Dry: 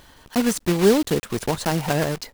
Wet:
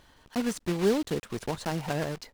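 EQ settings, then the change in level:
high-shelf EQ 9,800 Hz −9 dB
−8.5 dB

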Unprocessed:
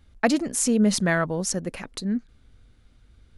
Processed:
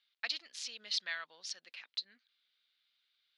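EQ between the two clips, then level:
dynamic equaliser 4,800 Hz, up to +4 dB, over −40 dBFS, Q 0.87
four-pole ladder band-pass 4,800 Hz, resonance 40%
high-frequency loss of the air 340 metres
+14.0 dB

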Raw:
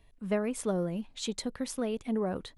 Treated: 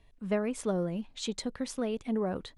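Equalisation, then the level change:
low-pass filter 8,600 Hz 12 dB per octave
0.0 dB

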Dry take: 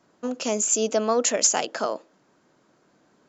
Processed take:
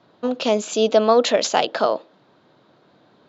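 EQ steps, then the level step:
low-pass with resonance 3,800 Hz, resonance Q 4.8
parametric band 110 Hz +11 dB 1.4 octaves
parametric band 680 Hz +9.5 dB 2.6 octaves
−2.0 dB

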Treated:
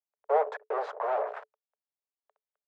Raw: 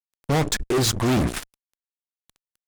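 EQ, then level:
Chebyshev high-pass with heavy ripple 420 Hz, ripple 6 dB
low-pass with resonance 850 Hz, resonance Q 2.1
0.0 dB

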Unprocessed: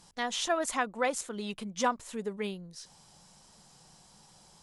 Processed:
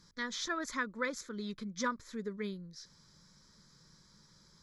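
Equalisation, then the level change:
high-shelf EQ 7,800 Hz −4.5 dB
phaser with its sweep stopped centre 2,800 Hz, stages 6
−1.0 dB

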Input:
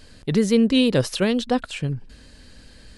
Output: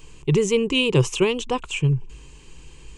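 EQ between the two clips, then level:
EQ curve with evenly spaced ripples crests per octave 0.71, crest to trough 16 dB
−1.0 dB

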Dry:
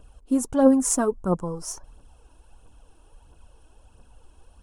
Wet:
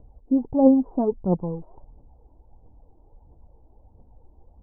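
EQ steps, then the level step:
elliptic low-pass filter 860 Hz, stop band 80 dB
parametric band 120 Hz +4 dB 2 octaves
0.0 dB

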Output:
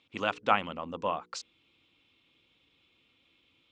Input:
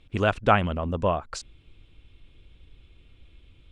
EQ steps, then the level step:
loudspeaker in its box 320–7,000 Hz, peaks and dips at 400 Hz −9 dB, 640 Hz −8 dB, 1,600 Hz −6 dB
mains-hum notches 60/120/180/240/300/360/420/480 Hz
−2.0 dB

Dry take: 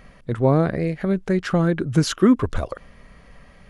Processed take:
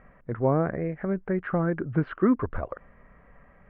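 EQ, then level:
low-pass filter 2,000 Hz 24 dB per octave
high-frequency loss of the air 290 metres
low-shelf EQ 430 Hz −6.5 dB
−1.5 dB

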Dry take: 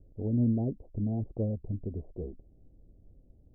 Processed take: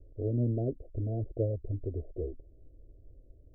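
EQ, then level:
elliptic low-pass filter 680 Hz, stop band 40 dB
phaser with its sweep stopped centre 480 Hz, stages 4
+5.0 dB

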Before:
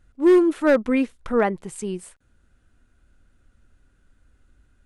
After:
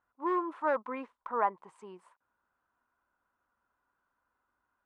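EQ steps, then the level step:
resonant band-pass 1,000 Hz, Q 6
+4.5 dB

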